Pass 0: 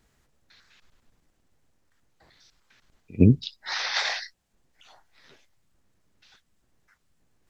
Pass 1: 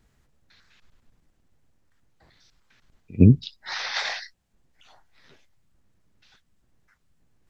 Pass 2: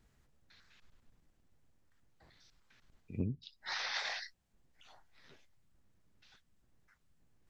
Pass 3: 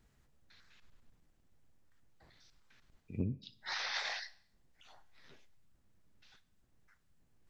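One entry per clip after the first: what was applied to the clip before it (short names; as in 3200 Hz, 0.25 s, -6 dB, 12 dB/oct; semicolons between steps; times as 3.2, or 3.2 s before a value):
tone controls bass +5 dB, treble -2 dB; gain -1 dB
compressor 6:1, threshold -29 dBFS, peak gain reduction 19 dB; gain -5.5 dB
Schroeder reverb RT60 0.6 s, combs from 29 ms, DRR 17 dB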